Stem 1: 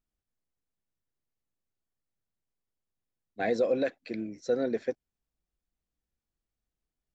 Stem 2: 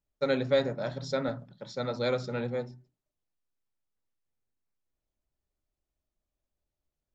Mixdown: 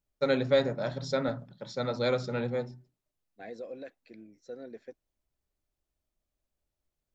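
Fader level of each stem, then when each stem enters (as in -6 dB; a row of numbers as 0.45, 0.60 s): -15.0, +1.0 dB; 0.00, 0.00 s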